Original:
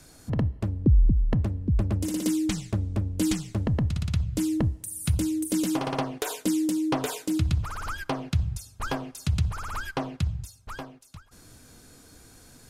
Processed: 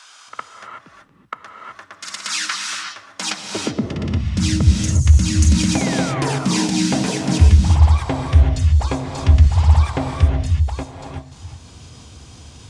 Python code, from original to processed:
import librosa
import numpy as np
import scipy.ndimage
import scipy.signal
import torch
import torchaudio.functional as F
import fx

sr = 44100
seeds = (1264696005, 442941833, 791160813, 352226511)

p1 = fx.high_shelf(x, sr, hz=11000.0, db=-5.0)
p2 = fx.formant_shift(p1, sr, semitones=-6)
p3 = fx.spec_paint(p2, sr, seeds[0], shape='fall', start_s=5.75, length_s=0.71, low_hz=680.0, high_hz=2500.0, level_db=-40.0)
p4 = fx.filter_sweep_highpass(p3, sr, from_hz=1300.0, to_hz=67.0, start_s=2.98, end_s=4.41, q=2.7)
p5 = fx.level_steps(p4, sr, step_db=19)
p6 = p4 + (p5 * 10.0 ** (2.5 / 20.0))
p7 = fx.rev_gated(p6, sr, seeds[1], gate_ms=400, shape='rising', drr_db=2.0)
y = p7 * 10.0 ** (3.5 / 20.0)